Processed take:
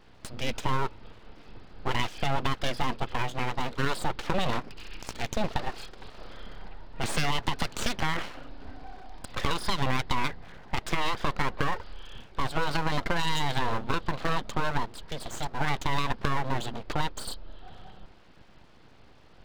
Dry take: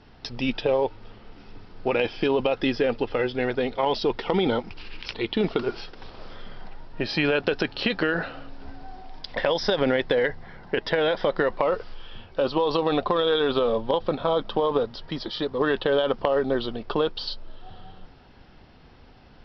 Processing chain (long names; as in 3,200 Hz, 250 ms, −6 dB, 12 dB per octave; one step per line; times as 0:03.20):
downsampling to 11,025 Hz
full-wave rectification
0:07.03–0:07.84: multiband upward and downward compressor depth 70%
level −2 dB